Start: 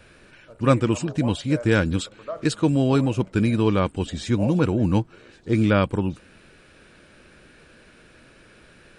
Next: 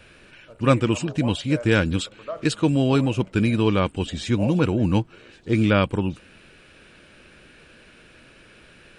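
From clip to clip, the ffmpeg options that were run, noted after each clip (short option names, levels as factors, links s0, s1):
-af "equalizer=f=2800:w=2:g=5.5"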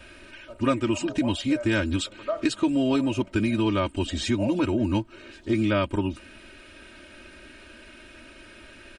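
-af "aecho=1:1:3.2:0.98,acompressor=threshold=0.0708:ratio=2.5"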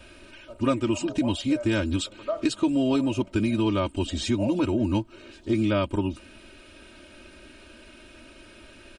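-af "equalizer=f=1800:w=1.8:g=-6"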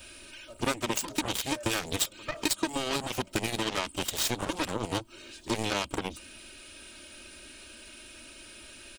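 -af "crystalizer=i=5:c=0,acompressor=threshold=0.0562:ratio=2,aeval=exprs='0.237*(cos(1*acos(clip(val(0)/0.237,-1,1)))-cos(1*PI/2))+0.0596*(cos(7*acos(clip(val(0)/0.237,-1,1)))-cos(7*PI/2))':c=same,volume=0.75"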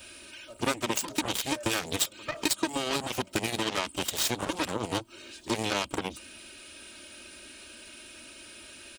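-af "highpass=f=91:p=1,volume=1.12"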